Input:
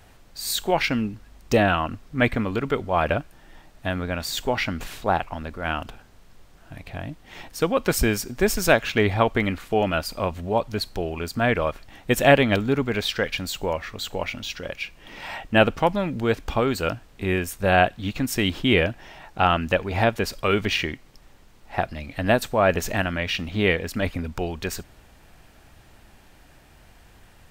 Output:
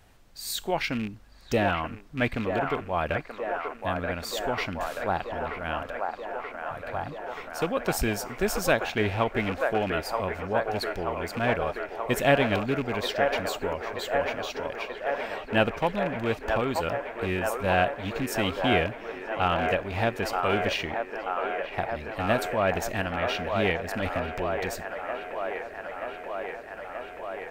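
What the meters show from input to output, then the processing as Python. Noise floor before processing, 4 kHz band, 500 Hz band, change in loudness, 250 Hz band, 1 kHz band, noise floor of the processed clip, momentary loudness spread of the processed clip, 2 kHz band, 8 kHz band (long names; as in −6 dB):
−52 dBFS, −5.5 dB, −3.5 dB, −5.0 dB, −5.5 dB, −2.5 dB, −43 dBFS, 10 LU, −3.5 dB, −6.0 dB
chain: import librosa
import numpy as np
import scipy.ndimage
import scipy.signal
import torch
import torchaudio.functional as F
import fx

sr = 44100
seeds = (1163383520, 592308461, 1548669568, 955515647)

y = fx.rattle_buzz(x, sr, strikes_db=-27.0, level_db=-21.0)
y = fx.echo_wet_bandpass(y, sr, ms=931, feedback_pct=79, hz=910.0, wet_db=-3.0)
y = F.gain(torch.from_numpy(y), -6.0).numpy()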